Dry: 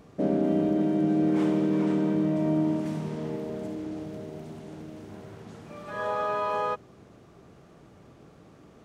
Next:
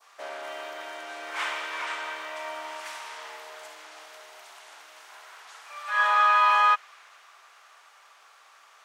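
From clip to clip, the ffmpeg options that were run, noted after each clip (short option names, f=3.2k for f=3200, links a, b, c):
-af "highpass=f=1k:w=0.5412,highpass=f=1k:w=1.3066,adynamicequalizer=threshold=0.00355:dfrequency=2200:dqfactor=0.74:tfrequency=2200:tqfactor=0.74:attack=5:release=100:ratio=0.375:range=3.5:mode=boostabove:tftype=bell,volume=9dB"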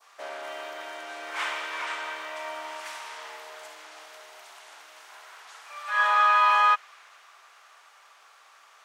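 -af anull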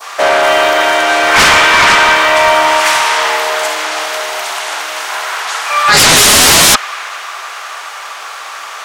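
-af "aeval=exprs='0.335*sin(PI/2*8.91*val(0)/0.335)':c=same,volume=6.5dB"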